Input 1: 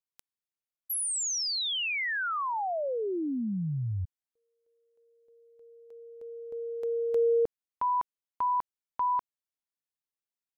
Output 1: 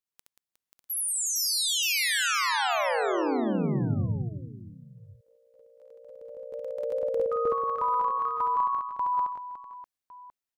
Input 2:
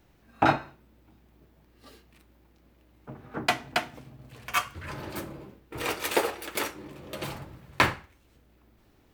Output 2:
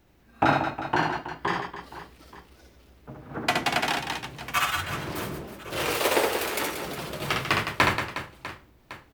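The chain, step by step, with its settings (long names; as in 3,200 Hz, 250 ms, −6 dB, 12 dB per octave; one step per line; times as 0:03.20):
reverse bouncing-ball delay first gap 70 ms, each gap 1.6×, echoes 5
delay with pitch and tempo change per echo 557 ms, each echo +2 semitones, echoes 2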